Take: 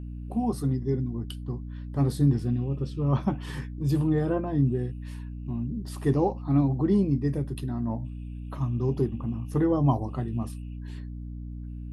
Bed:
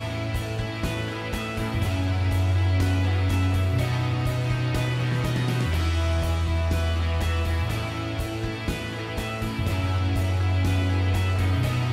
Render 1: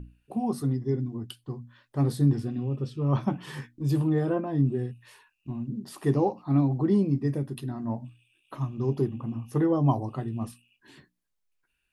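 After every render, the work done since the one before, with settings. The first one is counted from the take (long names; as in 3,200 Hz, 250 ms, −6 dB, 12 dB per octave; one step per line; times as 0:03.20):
mains-hum notches 60/120/180/240/300 Hz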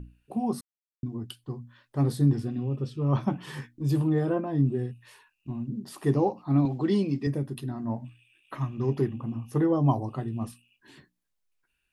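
0:00.61–0:01.03: silence
0:06.65–0:07.27: meter weighting curve D
0:07.96–0:09.13: parametric band 1,900 Hz +11 dB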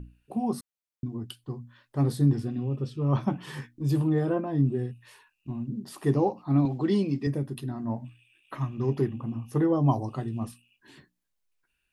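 0:09.92–0:10.40: parametric band 6,100 Hz +7.5 dB 1.2 octaves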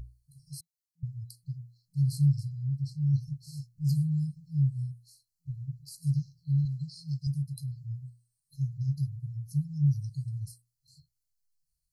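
brick-wall band-stop 170–4,000 Hz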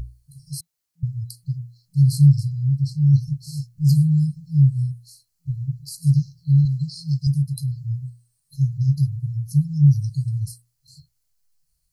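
level +11 dB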